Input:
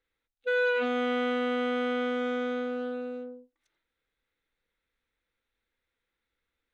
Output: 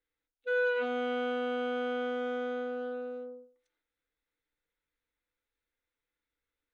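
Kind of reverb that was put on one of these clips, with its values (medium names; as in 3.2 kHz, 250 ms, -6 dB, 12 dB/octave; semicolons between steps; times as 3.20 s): FDN reverb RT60 0.44 s, low-frequency decay 0.75×, high-frequency decay 0.3×, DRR 4.5 dB; trim -7.5 dB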